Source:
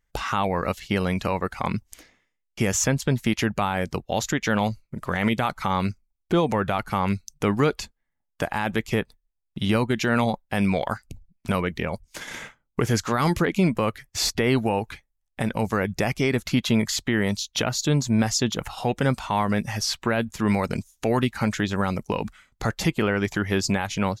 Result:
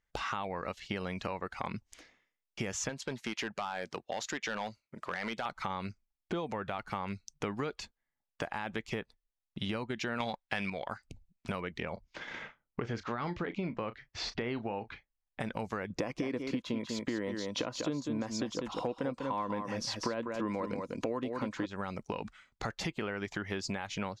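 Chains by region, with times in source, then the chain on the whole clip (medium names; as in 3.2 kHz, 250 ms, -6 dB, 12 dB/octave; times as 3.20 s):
2.89–5.46 s: high-pass 380 Hz 6 dB/octave + hard clipper -20 dBFS
10.20–10.70 s: peaking EQ 2.8 kHz +10 dB 2.8 oct + waveshaping leveller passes 1
11.93–15.40 s: distance through air 180 m + doubling 34 ms -13.5 dB
15.90–21.66 s: small resonant body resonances 300/500/1000 Hz, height 13 dB, ringing for 30 ms + delay 196 ms -7 dB
whole clip: low-pass 5.9 kHz 12 dB/octave; bass shelf 210 Hz -7 dB; compression, threshold -28 dBFS; trim -4.5 dB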